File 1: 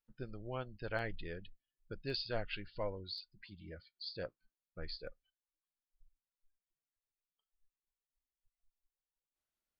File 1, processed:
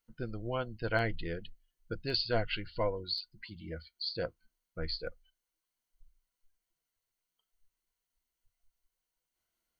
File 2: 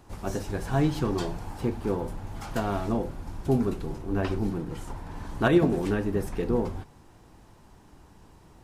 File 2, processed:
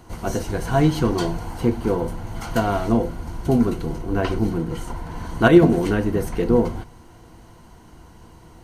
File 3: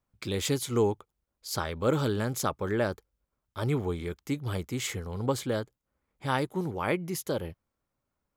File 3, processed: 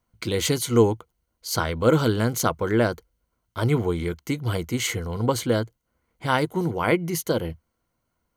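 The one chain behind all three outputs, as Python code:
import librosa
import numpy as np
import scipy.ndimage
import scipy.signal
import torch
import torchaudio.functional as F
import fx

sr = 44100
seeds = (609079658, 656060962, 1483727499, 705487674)

y = fx.ripple_eq(x, sr, per_octave=1.9, db=7)
y = F.gain(torch.from_numpy(y), 6.5).numpy()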